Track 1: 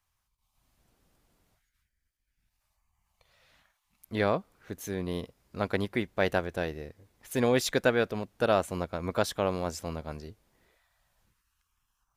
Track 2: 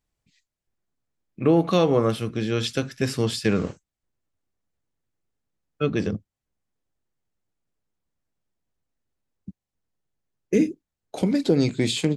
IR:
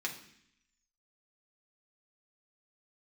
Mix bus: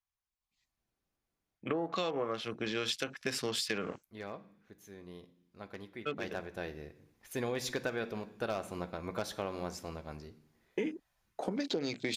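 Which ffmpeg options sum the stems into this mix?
-filter_complex "[0:a]aeval=exprs='0.188*(abs(mod(val(0)/0.188+3,4)-2)-1)':c=same,volume=-9dB,afade=t=in:st=6.12:d=0.71:silence=0.281838,asplit=3[a][b][c];[b]volume=-5dB[d];[1:a]highpass=f=910:p=1,afwtdn=0.00708,adelay=250,volume=2dB[e];[c]apad=whole_len=551943[f];[e][f]sidechaincompress=threshold=-49dB:ratio=8:attack=21:release=760[g];[2:a]atrim=start_sample=2205[h];[d][h]afir=irnorm=-1:irlink=0[i];[a][g][i]amix=inputs=3:normalize=0,acompressor=threshold=-31dB:ratio=6"

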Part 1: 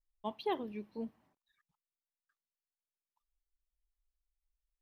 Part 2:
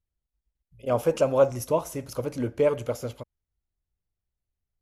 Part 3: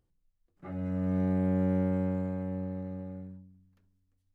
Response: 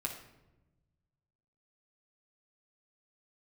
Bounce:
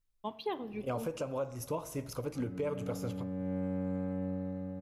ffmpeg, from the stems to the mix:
-filter_complex "[0:a]volume=1.5dB,asplit=2[a][b];[b]volume=-11dB[c];[1:a]bandreject=f=610:w=18,alimiter=limit=-13.5dB:level=0:latency=1:release=492,volume=-6.5dB,asplit=3[d][e][f];[e]volume=-9dB[g];[2:a]alimiter=level_in=0.5dB:limit=-24dB:level=0:latency=1,volume=-0.5dB,aecho=1:1:3.9:0.43,adelay=1700,volume=-5dB,asplit=2[h][i];[i]volume=-8.5dB[j];[f]apad=whole_len=266708[k];[h][k]sidechaincompress=threshold=-51dB:ratio=8:attack=7.7:release=375[l];[3:a]atrim=start_sample=2205[m];[c][g][j]amix=inputs=3:normalize=0[n];[n][m]afir=irnorm=-1:irlink=0[o];[a][d][l][o]amix=inputs=4:normalize=0,alimiter=level_in=2dB:limit=-24dB:level=0:latency=1:release=260,volume=-2dB"

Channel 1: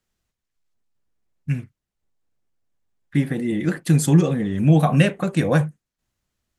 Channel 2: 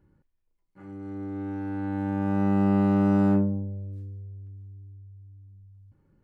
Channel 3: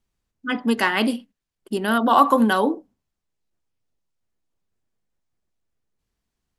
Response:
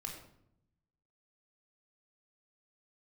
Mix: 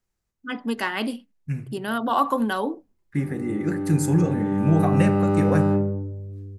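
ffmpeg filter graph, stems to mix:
-filter_complex "[0:a]equalizer=f=3.3k:t=o:w=0.45:g=-13.5,volume=-7dB,asplit=2[a][b];[b]volume=-5.5dB[c];[1:a]equalizer=f=360:t=o:w=0.25:g=10,adelay=2400,volume=-1.5dB,asplit=2[d][e];[e]volume=-3.5dB[f];[2:a]volume=-6dB[g];[3:a]atrim=start_sample=2205[h];[c][f]amix=inputs=2:normalize=0[i];[i][h]afir=irnorm=-1:irlink=0[j];[a][d][g][j]amix=inputs=4:normalize=0"

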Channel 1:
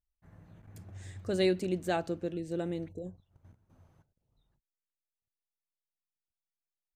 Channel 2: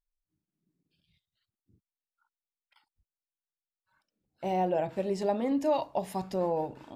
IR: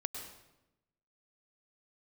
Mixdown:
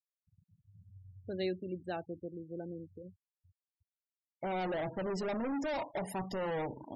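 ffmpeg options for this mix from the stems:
-filter_complex "[0:a]volume=-8dB[a];[1:a]asoftclip=type=hard:threshold=-35dB,volume=1.5dB[b];[a][b]amix=inputs=2:normalize=0,afftfilt=real='re*gte(hypot(re,im),0.00708)':imag='im*gte(hypot(re,im),0.00708)':win_size=1024:overlap=0.75"

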